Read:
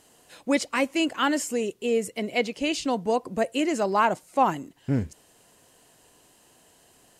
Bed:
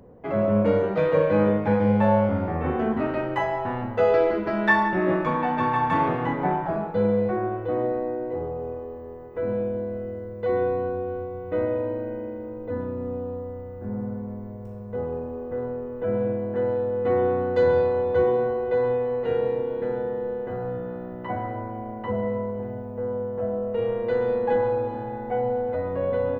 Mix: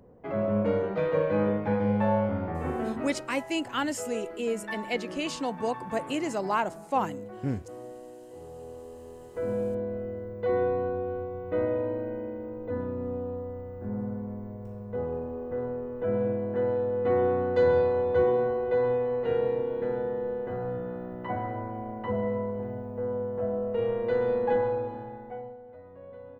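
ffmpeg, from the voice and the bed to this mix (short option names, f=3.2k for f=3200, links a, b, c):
-filter_complex "[0:a]adelay=2550,volume=-5.5dB[a];[1:a]volume=9.5dB,afade=t=out:st=2.78:d=0.51:silence=0.251189,afade=t=in:st=8.31:d=1.38:silence=0.177828,afade=t=out:st=24.48:d=1.09:silence=0.11885[b];[a][b]amix=inputs=2:normalize=0"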